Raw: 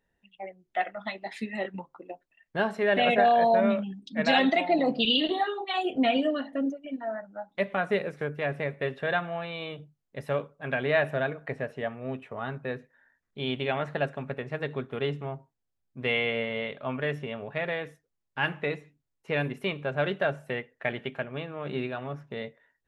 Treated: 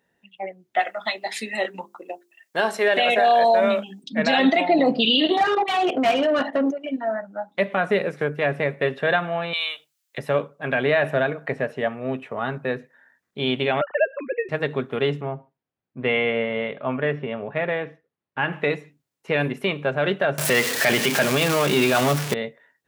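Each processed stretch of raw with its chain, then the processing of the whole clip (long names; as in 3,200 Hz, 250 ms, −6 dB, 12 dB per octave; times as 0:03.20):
0:00.79–0:04.04: bass and treble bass −13 dB, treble +12 dB + mains-hum notches 50/100/150/200/250/300/350/400 Hz
0:05.37–0:06.89: parametric band 200 Hz −7 dB 2.6 octaves + output level in coarse steps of 13 dB + mid-hump overdrive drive 28 dB, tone 1,000 Hz, clips at −17 dBFS
0:09.53–0:10.18: high-pass filter 1,300 Hz + high-shelf EQ 2,500 Hz +12 dB
0:13.81–0:14.49: three sine waves on the formant tracks + multiband upward and downward compressor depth 40%
0:15.21–0:18.53: high-frequency loss of the air 330 metres + repeating echo 72 ms, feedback 22%, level −23.5 dB
0:20.38–0:22.34: converter with a step at zero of −38 dBFS + high-shelf EQ 2,500 Hz +10 dB + leveller curve on the samples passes 2
whole clip: high-pass filter 140 Hz; brickwall limiter −17.5 dBFS; level +8 dB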